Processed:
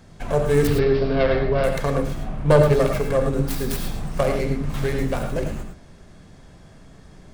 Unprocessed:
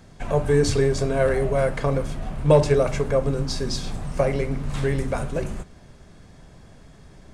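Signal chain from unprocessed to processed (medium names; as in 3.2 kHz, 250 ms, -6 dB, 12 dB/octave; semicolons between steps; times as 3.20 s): tracing distortion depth 0.42 ms; 0.67–1.64 s: steep low-pass 5.2 kHz 72 dB/octave; 2.23–2.73 s: treble shelf 4 kHz -9.5 dB; gated-style reverb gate 130 ms rising, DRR 4.5 dB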